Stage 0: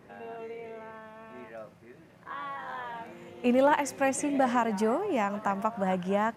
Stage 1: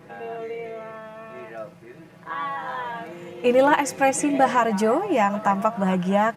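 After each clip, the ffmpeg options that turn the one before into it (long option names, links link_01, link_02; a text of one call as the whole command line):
ffmpeg -i in.wav -af "aecho=1:1:6.1:0.65,volume=6dB" out.wav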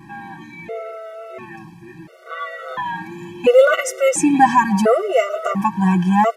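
ffmpeg -i in.wav -af "afftfilt=real='re*gt(sin(2*PI*0.72*pts/sr)*(1-2*mod(floor(b*sr/1024/380),2)),0)':imag='im*gt(sin(2*PI*0.72*pts/sr)*(1-2*mod(floor(b*sr/1024/380),2)),0)':win_size=1024:overlap=0.75,volume=7.5dB" out.wav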